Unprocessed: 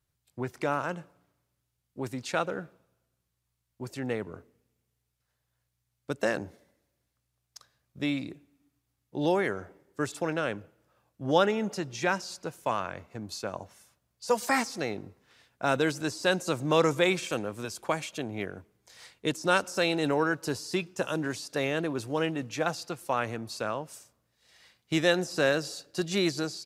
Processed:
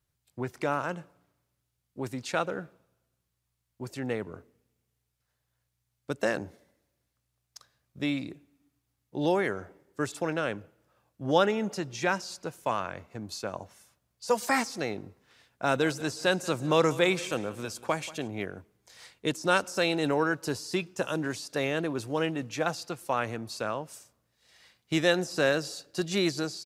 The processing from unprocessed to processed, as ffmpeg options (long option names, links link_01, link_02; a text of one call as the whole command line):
ffmpeg -i in.wav -filter_complex "[0:a]asplit=3[link_01][link_02][link_03];[link_01]afade=type=out:start_time=15.75:duration=0.02[link_04];[link_02]aecho=1:1:184|368|552:0.112|0.0471|0.0198,afade=type=in:start_time=15.75:duration=0.02,afade=type=out:start_time=18.27:duration=0.02[link_05];[link_03]afade=type=in:start_time=18.27:duration=0.02[link_06];[link_04][link_05][link_06]amix=inputs=3:normalize=0" out.wav